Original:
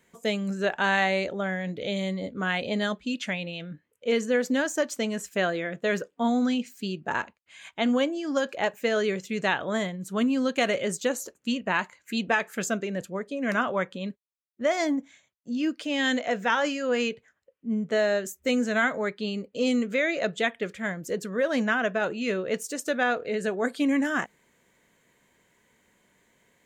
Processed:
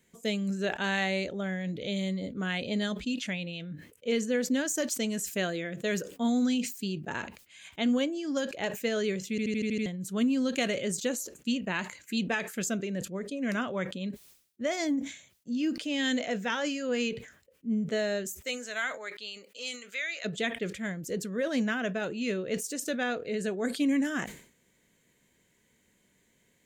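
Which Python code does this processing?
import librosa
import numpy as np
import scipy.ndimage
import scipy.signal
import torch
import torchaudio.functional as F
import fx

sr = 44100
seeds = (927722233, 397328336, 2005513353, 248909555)

y = fx.high_shelf(x, sr, hz=6400.0, db=7.5, at=(4.67, 6.84))
y = fx.highpass(y, sr, hz=fx.line((18.39, 630.0), (20.24, 1400.0)), slope=12, at=(18.39, 20.24), fade=0.02)
y = fx.edit(y, sr, fx.stutter_over(start_s=9.3, slice_s=0.08, count=7), tone=tone)
y = fx.peak_eq(y, sr, hz=1000.0, db=-10.0, octaves=2.1)
y = fx.sustainer(y, sr, db_per_s=110.0)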